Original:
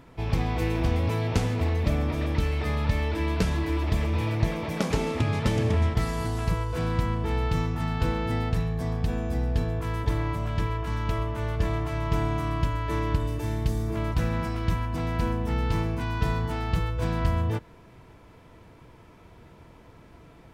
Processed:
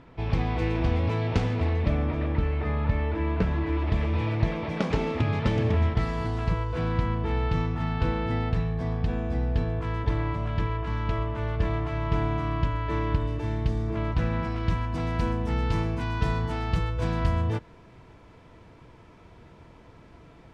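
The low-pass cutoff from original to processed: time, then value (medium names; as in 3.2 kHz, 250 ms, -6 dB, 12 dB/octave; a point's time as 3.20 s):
1.60 s 4.1 kHz
2.39 s 2 kHz
3.45 s 2 kHz
4.10 s 3.7 kHz
14.42 s 3.7 kHz
15.00 s 7.2 kHz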